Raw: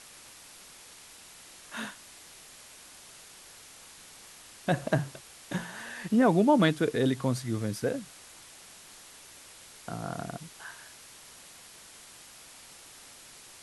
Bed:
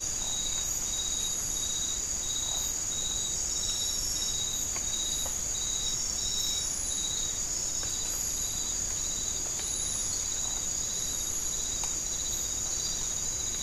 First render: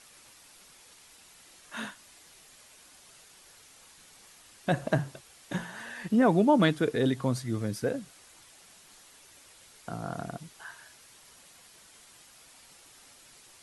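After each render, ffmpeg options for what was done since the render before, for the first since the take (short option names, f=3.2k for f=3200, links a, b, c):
-af "afftdn=nr=6:nf=-51"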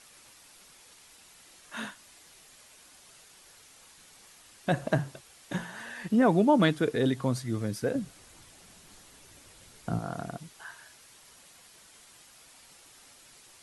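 -filter_complex "[0:a]asettb=1/sr,asplit=3[a][b][c];[a]atrim=end=7.954[d];[b]atrim=start=7.95:end=9.99,asetpts=PTS-STARTPTS,afade=t=in:d=0.004:c=qsin,afade=t=out:st=2.036:d=0.004:c=qsin,lowshelf=f=340:g=11.5[e];[c]atrim=start=9.986[f];[d][e]acrossfade=d=0.004:c1=hsin:c2=qsin[g];[g][f]acrossfade=d=0.004:c1=qsin:c2=hsin"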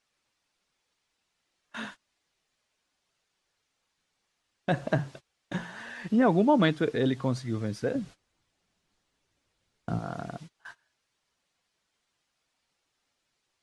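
-af "lowpass=5.8k,agate=range=-21dB:threshold=-44dB:ratio=16:detection=peak"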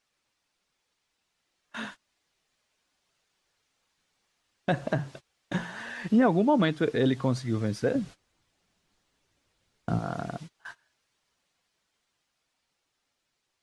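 -af "alimiter=limit=-17dB:level=0:latency=1:release=328,dynaudnorm=f=260:g=17:m=3dB"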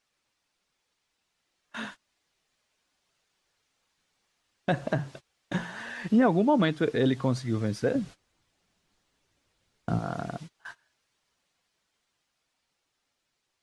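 -af anull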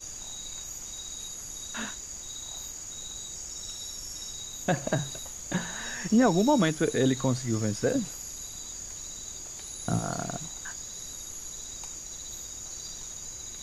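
-filter_complex "[1:a]volume=-8dB[a];[0:a][a]amix=inputs=2:normalize=0"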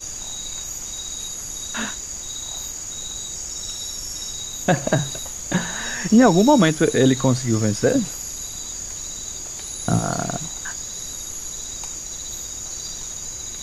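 -af "volume=8.5dB"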